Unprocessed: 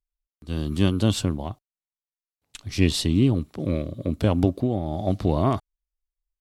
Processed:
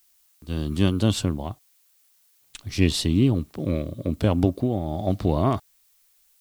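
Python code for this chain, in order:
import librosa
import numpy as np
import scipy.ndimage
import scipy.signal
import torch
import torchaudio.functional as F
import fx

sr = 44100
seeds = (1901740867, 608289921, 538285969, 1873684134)

y = fx.dmg_noise_colour(x, sr, seeds[0], colour='blue', level_db=-62.0)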